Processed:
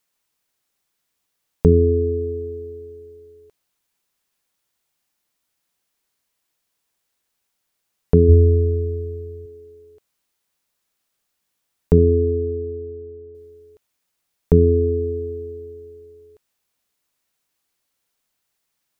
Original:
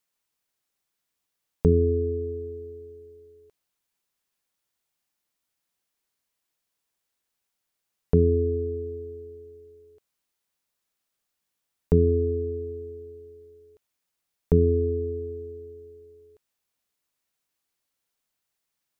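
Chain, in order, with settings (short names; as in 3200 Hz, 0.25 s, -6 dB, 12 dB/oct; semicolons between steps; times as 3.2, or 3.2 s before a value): 8.28–9.46 bell 75 Hz +14.5 dB 0.47 oct; 11.98–13.35 LPF 1200 Hz 12 dB/oct; gain +6 dB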